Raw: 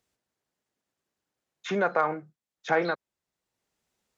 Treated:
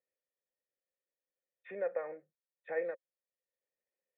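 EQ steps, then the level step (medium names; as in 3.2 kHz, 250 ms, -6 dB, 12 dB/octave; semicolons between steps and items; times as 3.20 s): cascade formant filter e; high-pass 290 Hz 6 dB/octave; -1.0 dB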